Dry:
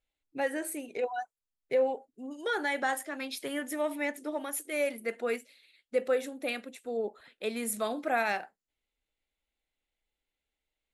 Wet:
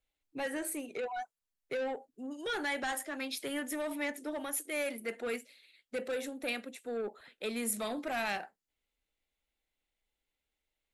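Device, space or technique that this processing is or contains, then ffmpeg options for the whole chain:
one-band saturation: -filter_complex "[0:a]acrossover=split=230|2200[a][b][c];[b]asoftclip=type=tanh:threshold=-33.5dB[d];[a][d][c]amix=inputs=3:normalize=0"

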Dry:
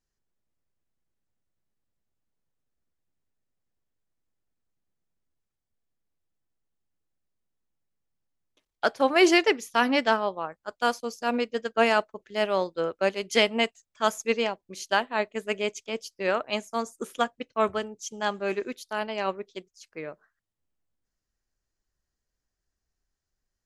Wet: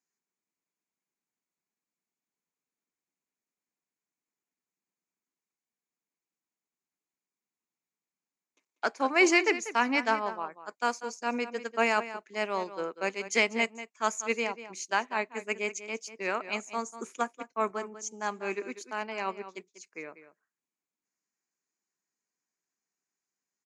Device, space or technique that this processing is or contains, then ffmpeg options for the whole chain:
television speaker: -filter_complex "[0:a]asettb=1/sr,asplit=3[a][b][c];[a]atrim=end=17.214[d];[b]atrim=start=17.21:end=18.28,asetpts=PTS-STARTPTS,afade=t=in:d=0.004:c=qsin,afade=t=out:st=1.066:d=0.004:c=qsin,equalizer=f=2.9k:t=o:w=1.1:g=-6[e];[c]atrim=start=18.276[f];[d][e]acrossfade=d=0.004:c1=hsin:c2=qsin[g];[g][f]acrossfade=d=0.004:c1=qsin:c2=hsin,highpass=f=190:w=0.5412,highpass=f=190:w=1.3066,equalizer=f=570:t=q:w=4:g=-6,equalizer=f=1k:t=q:w=4:g=4,equalizer=f=2.3k:t=q:w=4:g=8,equalizer=f=3.3k:t=q:w=4:g=-9,equalizer=f=6.8k:t=q:w=4:g=9,lowpass=f=8.6k:w=0.5412,lowpass=f=8.6k:w=1.3066,asplit=2[h][i];[i]adelay=192.4,volume=-13dB,highshelf=f=4k:g=-4.33[j];[h][j]amix=inputs=2:normalize=0,volume=-4.5dB"

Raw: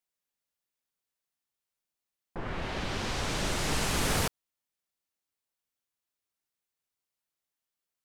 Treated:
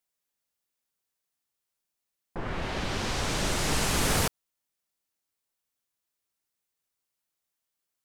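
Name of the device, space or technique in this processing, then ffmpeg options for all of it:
exciter from parts: -filter_complex "[0:a]asplit=2[a][b];[b]highpass=4.1k,asoftclip=type=tanh:threshold=-31dB,volume=-11dB[c];[a][c]amix=inputs=2:normalize=0,volume=2.5dB"

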